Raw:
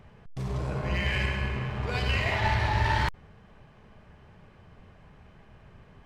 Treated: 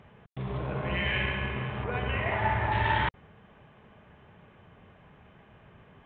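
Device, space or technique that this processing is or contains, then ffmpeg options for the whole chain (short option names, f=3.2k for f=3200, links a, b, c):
Bluetooth headset: -filter_complex "[0:a]asettb=1/sr,asplit=3[a][b][c];[a]atrim=end=1.844[d];[b]atrim=start=1.84:end=2.72,asetpts=PTS-STARTPTS,afade=t=in:d=0.004:c=qsin,afade=t=out:st=0.876:d=0.004:c=qsin,lowpass=1.9k[e];[c]atrim=start=2.716[f];[d][e]acrossfade=d=0.004:c1=hsin:c2=qsin[g];[g][f]acrossfade=d=0.004:c1=qsin:c2=hsin,highpass=f=130:p=1,aresample=8000,aresample=44100,volume=1dB" -ar 16000 -c:a sbc -b:a 64k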